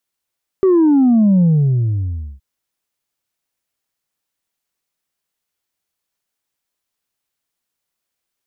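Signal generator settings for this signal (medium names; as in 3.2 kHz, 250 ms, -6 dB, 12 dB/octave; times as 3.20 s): sub drop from 390 Hz, over 1.77 s, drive 1.5 dB, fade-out 0.98 s, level -9 dB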